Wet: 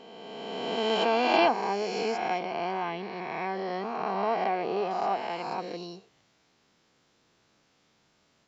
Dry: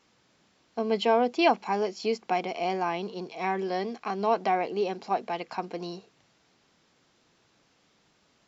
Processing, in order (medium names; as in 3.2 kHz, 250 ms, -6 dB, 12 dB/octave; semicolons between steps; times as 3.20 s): reverse spectral sustain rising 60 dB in 2.21 s; 2.39–4.91 s: distance through air 120 m; trim -5 dB